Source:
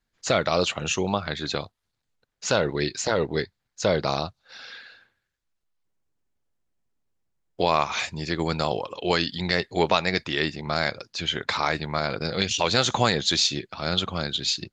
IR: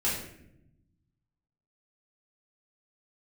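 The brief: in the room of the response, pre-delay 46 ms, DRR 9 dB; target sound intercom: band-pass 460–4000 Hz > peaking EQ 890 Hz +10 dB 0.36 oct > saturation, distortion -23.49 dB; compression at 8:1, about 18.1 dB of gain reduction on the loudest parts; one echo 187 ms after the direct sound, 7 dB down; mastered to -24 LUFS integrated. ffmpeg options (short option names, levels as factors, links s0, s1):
-filter_complex "[0:a]acompressor=threshold=0.0158:ratio=8,aecho=1:1:187:0.447,asplit=2[s0][s1];[1:a]atrim=start_sample=2205,adelay=46[s2];[s1][s2]afir=irnorm=-1:irlink=0,volume=0.126[s3];[s0][s3]amix=inputs=2:normalize=0,highpass=460,lowpass=4000,equalizer=f=890:t=o:w=0.36:g=10,asoftclip=threshold=0.0668,volume=6.68"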